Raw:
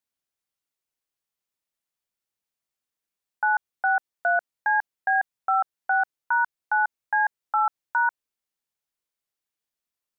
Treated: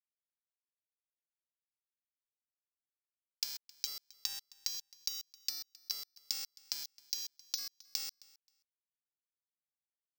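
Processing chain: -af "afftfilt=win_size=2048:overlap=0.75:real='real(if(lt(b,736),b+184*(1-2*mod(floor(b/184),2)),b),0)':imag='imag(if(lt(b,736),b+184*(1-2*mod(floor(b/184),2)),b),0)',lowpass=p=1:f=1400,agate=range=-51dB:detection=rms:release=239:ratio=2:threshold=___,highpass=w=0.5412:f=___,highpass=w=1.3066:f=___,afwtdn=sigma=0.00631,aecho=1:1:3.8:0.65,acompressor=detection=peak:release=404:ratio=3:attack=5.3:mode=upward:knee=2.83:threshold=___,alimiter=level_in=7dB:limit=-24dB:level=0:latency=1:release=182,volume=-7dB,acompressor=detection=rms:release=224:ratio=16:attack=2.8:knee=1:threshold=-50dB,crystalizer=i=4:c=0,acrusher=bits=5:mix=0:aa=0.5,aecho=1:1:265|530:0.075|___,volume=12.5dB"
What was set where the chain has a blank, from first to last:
-31dB, 570, 570, -42dB, 0.0135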